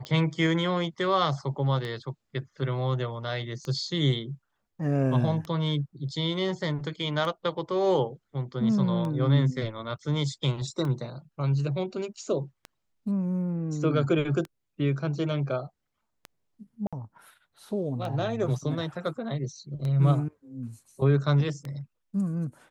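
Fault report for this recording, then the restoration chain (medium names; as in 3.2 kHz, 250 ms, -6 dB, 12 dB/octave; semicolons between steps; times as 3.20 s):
tick 33 1/3 rpm -22 dBFS
16.87–16.93 s: dropout 56 ms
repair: de-click; interpolate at 16.87 s, 56 ms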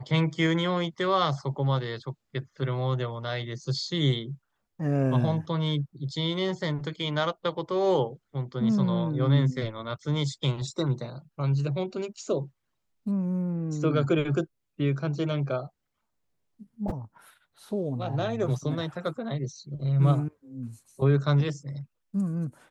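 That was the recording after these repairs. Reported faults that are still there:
nothing left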